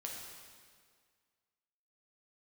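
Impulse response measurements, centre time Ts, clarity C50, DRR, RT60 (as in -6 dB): 82 ms, 1.5 dB, -2.0 dB, 1.9 s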